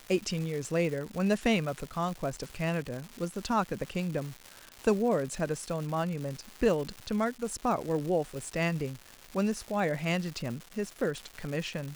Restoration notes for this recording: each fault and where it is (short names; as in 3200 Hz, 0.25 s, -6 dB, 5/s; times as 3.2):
crackle 370/s -36 dBFS